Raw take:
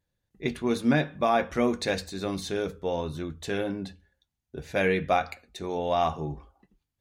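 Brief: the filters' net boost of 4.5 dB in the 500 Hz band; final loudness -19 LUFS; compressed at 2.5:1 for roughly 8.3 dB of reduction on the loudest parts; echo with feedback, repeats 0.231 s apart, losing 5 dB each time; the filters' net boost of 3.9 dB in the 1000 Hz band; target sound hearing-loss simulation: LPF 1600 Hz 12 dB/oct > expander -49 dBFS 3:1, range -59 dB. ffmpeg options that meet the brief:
-af "equalizer=f=500:t=o:g=4.5,equalizer=f=1k:t=o:g=4,acompressor=threshold=-28dB:ratio=2.5,lowpass=1.6k,aecho=1:1:231|462|693|924|1155|1386|1617:0.562|0.315|0.176|0.0988|0.0553|0.031|0.0173,agate=range=-59dB:threshold=-49dB:ratio=3,volume=11.5dB"

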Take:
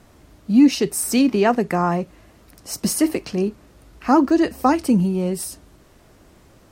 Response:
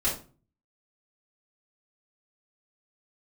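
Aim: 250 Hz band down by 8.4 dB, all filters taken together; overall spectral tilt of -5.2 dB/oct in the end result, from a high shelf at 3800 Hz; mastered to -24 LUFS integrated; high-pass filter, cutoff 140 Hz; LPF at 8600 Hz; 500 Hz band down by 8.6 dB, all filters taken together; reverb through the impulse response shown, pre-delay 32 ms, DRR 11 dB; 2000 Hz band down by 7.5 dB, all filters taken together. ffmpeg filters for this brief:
-filter_complex "[0:a]highpass=140,lowpass=8.6k,equalizer=f=250:t=o:g=-7,equalizer=f=500:t=o:g=-9,equalizer=f=2k:t=o:g=-7.5,highshelf=f=3.8k:g=-7,asplit=2[a][b];[1:a]atrim=start_sample=2205,adelay=32[c];[b][c]afir=irnorm=-1:irlink=0,volume=-20dB[d];[a][d]amix=inputs=2:normalize=0,volume=2.5dB"

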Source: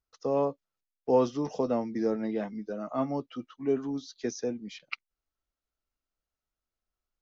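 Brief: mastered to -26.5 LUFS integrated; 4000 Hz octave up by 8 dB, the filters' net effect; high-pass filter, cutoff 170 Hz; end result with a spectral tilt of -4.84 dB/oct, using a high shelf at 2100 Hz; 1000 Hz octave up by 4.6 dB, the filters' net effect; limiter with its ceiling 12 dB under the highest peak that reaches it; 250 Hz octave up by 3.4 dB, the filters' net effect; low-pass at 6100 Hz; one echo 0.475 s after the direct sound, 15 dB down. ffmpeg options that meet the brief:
-af "highpass=170,lowpass=6.1k,equalizer=f=250:t=o:g=4.5,equalizer=f=1k:t=o:g=4,highshelf=f=2.1k:g=6.5,equalizer=f=4k:t=o:g=5,alimiter=limit=-20dB:level=0:latency=1,aecho=1:1:475:0.178,volume=5dB"

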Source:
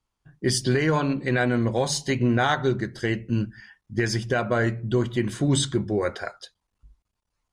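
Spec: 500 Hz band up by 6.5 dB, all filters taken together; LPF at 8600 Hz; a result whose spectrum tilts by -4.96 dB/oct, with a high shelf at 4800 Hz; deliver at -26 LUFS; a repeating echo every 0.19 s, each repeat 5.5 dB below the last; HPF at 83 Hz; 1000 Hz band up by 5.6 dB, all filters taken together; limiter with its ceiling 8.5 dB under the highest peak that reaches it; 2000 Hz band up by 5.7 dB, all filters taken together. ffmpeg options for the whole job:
-af "highpass=83,lowpass=8.6k,equalizer=f=500:t=o:g=7.5,equalizer=f=1k:t=o:g=3.5,equalizer=f=2k:t=o:g=6.5,highshelf=f=4.8k:g=-7.5,alimiter=limit=-13dB:level=0:latency=1,aecho=1:1:190|380|570|760|950|1140|1330:0.531|0.281|0.149|0.079|0.0419|0.0222|0.0118,volume=-2.5dB"

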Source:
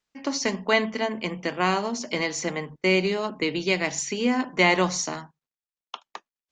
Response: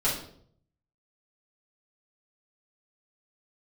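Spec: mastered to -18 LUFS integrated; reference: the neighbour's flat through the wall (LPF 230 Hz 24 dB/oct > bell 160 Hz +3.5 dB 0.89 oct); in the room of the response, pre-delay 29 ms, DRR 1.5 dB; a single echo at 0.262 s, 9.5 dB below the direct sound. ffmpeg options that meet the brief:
-filter_complex "[0:a]aecho=1:1:262:0.335,asplit=2[a][b];[1:a]atrim=start_sample=2205,adelay=29[c];[b][c]afir=irnorm=-1:irlink=0,volume=-12dB[d];[a][d]amix=inputs=2:normalize=0,lowpass=f=230:w=0.5412,lowpass=f=230:w=1.3066,equalizer=f=160:t=o:w=0.89:g=3.5,volume=12.5dB"

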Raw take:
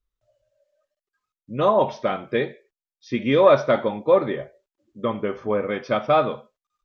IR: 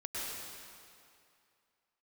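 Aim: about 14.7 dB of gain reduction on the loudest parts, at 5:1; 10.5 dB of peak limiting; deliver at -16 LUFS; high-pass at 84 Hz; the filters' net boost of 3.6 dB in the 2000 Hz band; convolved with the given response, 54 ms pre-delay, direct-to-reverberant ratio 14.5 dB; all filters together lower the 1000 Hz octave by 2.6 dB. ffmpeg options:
-filter_complex "[0:a]highpass=84,equalizer=f=1k:t=o:g=-5,equalizer=f=2k:t=o:g=6,acompressor=threshold=-28dB:ratio=5,alimiter=level_in=2dB:limit=-24dB:level=0:latency=1,volume=-2dB,asplit=2[a][b];[1:a]atrim=start_sample=2205,adelay=54[c];[b][c]afir=irnorm=-1:irlink=0,volume=-17.5dB[d];[a][d]amix=inputs=2:normalize=0,volume=21dB"

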